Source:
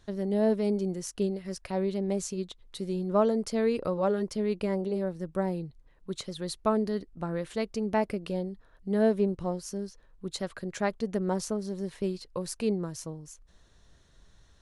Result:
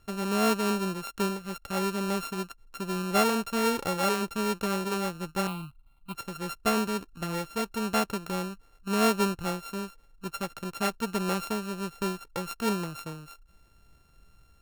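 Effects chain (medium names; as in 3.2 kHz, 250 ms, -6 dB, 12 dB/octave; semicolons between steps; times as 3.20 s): sorted samples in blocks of 32 samples; 5.47–6.15 s: static phaser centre 1.7 kHz, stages 6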